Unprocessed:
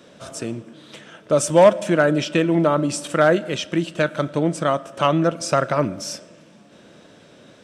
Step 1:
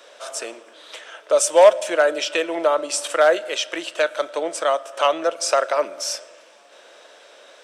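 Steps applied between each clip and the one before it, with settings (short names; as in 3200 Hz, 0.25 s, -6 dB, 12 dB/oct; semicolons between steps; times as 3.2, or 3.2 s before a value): HPF 510 Hz 24 dB/oct; dynamic EQ 1300 Hz, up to -5 dB, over -32 dBFS, Q 0.72; gain +4.5 dB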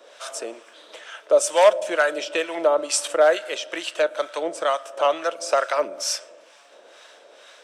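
harmonic tremolo 2.2 Hz, depth 70%, crossover 870 Hz; gain +2 dB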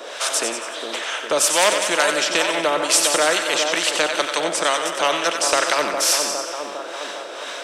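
split-band echo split 1100 Hz, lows 0.407 s, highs 92 ms, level -9.5 dB; spectral compressor 2:1; gain +1 dB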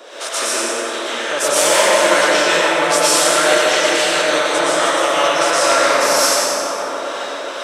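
plate-style reverb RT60 2.8 s, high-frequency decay 0.45×, pre-delay 0.105 s, DRR -9.5 dB; gain -4.5 dB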